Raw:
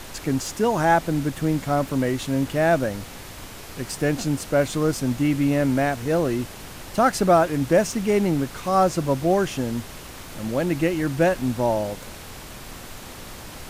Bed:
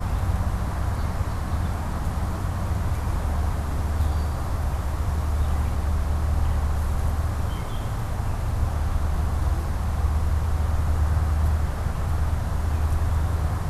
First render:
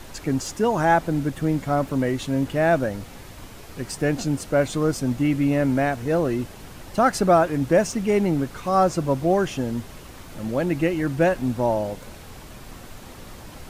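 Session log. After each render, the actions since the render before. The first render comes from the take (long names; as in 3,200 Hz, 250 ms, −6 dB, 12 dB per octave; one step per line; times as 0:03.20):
broadband denoise 6 dB, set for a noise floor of −39 dBFS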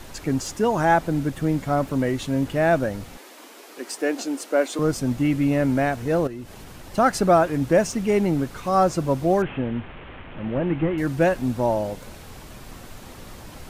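0:03.17–0:04.79: Butterworth high-pass 270 Hz
0:06.27–0:06.93: downward compressor 2.5 to 1, threshold −36 dBFS
0:09.42–0:10.98: linear delta modulator 16 kbit/s, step −35 dBFS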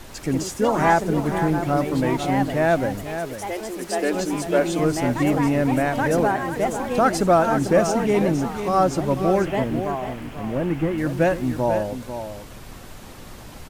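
delay with pitch and tempo change per echo 109 ms, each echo +3 semitones, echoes 2, each echo −6 dB
single-tap delay 494 ms −9.5 dB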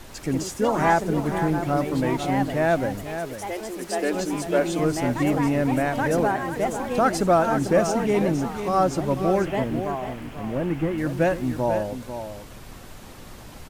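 level −2 dB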